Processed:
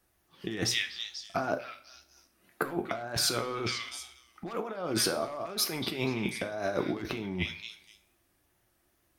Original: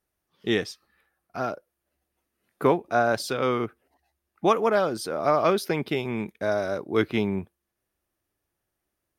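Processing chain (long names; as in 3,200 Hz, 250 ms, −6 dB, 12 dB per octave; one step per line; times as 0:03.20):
parametric band 480 Hz −5 dB 0.26 octaves
echo through a band-pass that steps 245 ms, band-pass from 2,900 Hz, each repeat 0.7 octaves, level −7.5 dB
tape wow and flutter 72 cents
wave folding −13.5 dBFS
compressor whose output falls as the input rises −35 dBFS, ratio −1
flanger 0.86 Hz, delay 3.8 ms, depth 5.7 ms, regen +86%
on a send at −7 dB: convolution reverb, pre-delay 3 ms
on the sum: level +5.5 dB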